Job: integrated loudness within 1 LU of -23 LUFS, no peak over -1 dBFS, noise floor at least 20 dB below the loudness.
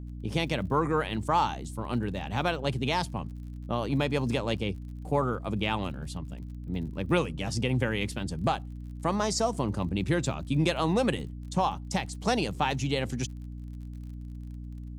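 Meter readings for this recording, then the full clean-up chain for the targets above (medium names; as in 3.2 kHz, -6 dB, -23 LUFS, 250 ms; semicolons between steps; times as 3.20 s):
tick rate 46 per s; hum 60 Hz; highest harmonic 300 Hz; hum level -37 dBFS; loudness -30.0 LUFS; peak level -12.5 dBFS; loudness target -23.0 LUFS
-> de-click; de-hum 60 Hz, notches 5; trim +7 dB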